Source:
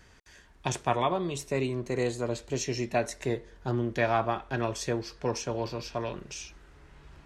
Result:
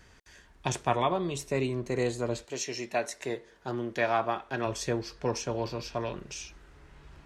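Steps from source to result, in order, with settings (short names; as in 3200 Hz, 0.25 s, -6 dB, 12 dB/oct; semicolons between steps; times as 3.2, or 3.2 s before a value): 2.43–4.65 HPF 630 Hz -> 230 Hz 6 dB/oct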